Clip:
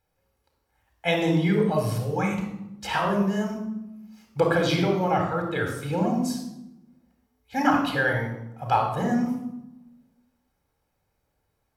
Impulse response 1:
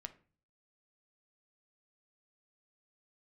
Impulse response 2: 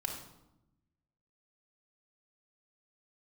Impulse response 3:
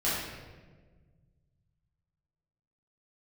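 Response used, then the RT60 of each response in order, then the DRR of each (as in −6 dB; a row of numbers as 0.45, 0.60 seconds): 2; 0.40, 0.90, 1.4 seconds; 8.0, 1.0, −10.0 decibels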